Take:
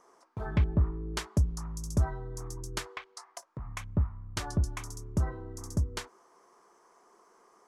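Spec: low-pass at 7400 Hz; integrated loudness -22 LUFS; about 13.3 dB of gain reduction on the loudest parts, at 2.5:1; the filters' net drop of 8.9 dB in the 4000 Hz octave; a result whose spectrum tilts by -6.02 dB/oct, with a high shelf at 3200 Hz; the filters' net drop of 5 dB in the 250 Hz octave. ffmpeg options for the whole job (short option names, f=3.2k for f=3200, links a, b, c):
-af "lowpass=7.4k,equalizer=f=250:t=o:g=-8.5,highshelf=f=3.2k:g=-4,equalizer=f=4k:t=o:g=-8.5,acompressor=threshold=-42dB:ratio=2.5,volume=23dB"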